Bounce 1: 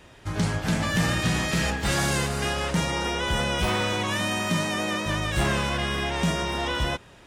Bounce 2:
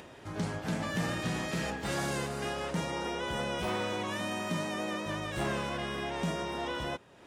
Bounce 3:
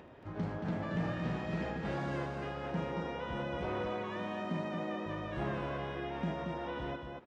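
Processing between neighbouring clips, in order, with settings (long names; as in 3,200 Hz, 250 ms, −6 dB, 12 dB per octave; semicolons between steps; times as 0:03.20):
high-pass filter 440 Hz 6 dB per octave; tilt shelving filter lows +6 dB, about 820 Hz; upward compression, threshold −36 dBFS; level −5.5 dB
head-to-tape spacing loss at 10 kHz 32 dB; on a send: loudspeakers that aren't time-aligned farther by 27 metres −12 dB, 78 metres −5 dB; on the sum: level −2 dB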